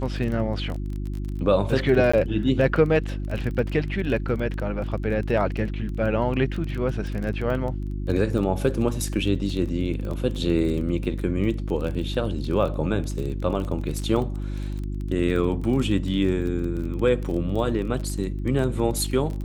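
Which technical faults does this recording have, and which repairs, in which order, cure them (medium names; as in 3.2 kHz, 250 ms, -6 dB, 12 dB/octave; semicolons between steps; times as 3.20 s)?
crackle 22 per s -29 dBFS
hum 50 Hz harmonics 7 -29 dBFS
2.12–2.13 s: dropout 15 ms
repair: de-click; de-hum 50 Hz, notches 7; interpolate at 2.12 s, 15 ms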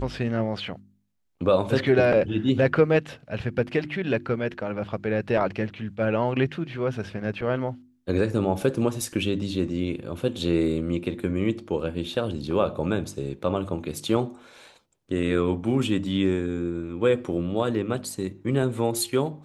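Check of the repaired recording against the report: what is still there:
nothing left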